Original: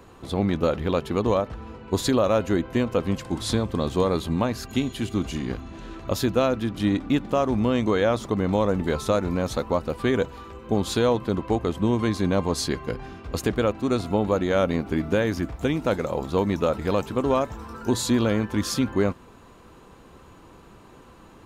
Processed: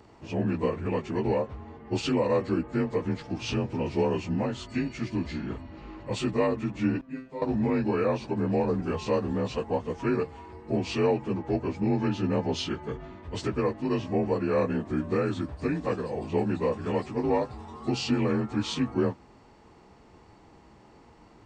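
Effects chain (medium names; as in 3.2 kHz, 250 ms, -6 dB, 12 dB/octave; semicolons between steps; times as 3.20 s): frequency axis rescaled in octaves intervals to 87%; 7.01–7.42 s: feedback comb 130 Hz, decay 0.33 s, harmonics all, mix 100%; trim -2.5 dB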